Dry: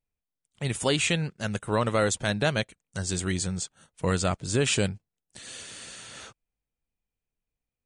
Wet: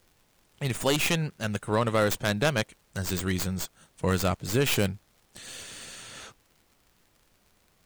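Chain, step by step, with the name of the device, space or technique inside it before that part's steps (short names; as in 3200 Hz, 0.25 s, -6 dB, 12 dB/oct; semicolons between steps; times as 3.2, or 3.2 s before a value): record under a worn stylus (tracing distortion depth 0.15 ms; crackle; pink noise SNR 36 dB)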